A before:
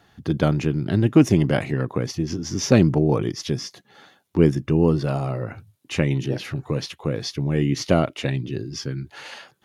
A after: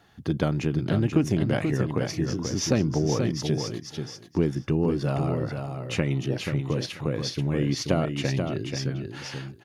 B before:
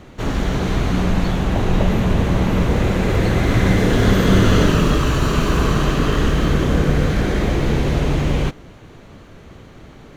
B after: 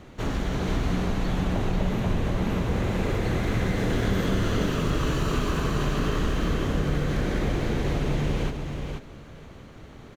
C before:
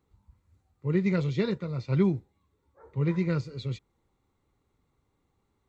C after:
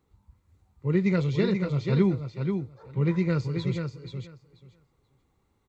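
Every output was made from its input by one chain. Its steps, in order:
compression 3:1, threshold -18 dBFS; on a send: feedback delay 484 ms, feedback 15%, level -6 dB; on the sum: normalise loudness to -27 LUFS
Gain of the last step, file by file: -2.0 dB, -5.0 dB, +2.0 dB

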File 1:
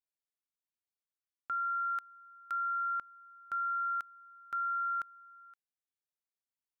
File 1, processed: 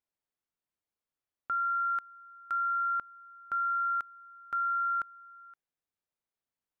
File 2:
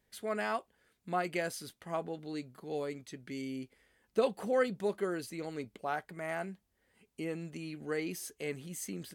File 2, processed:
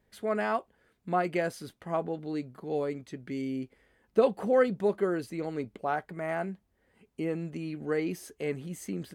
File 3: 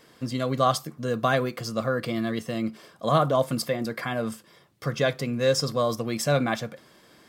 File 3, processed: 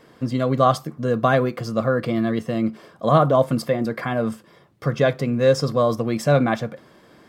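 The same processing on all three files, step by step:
treble shelf 2.4 kHz -11.5 dB; trim +6.5 dB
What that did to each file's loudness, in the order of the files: +3.5 LU, +5.5 LU, +5.5 LU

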